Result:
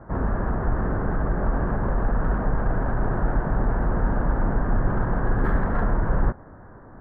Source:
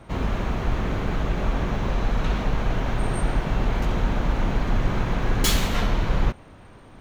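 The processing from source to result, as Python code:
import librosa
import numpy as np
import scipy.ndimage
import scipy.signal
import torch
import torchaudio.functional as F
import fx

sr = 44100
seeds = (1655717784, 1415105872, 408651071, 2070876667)

p1 = scipy.signal.sosfilt(scipy.signal.ellip(4, 1.0, 40, 1700.0, 'lowpass', fs=sr, output='sos'), x)
p2 = 10.0 ** (-25.5 / 20.0) * np.tanh(p1 / 10.0 ** (-25.5 / 20.0))
y = p1 + (p2 * 10.0 ** (-8.5 / 20.0))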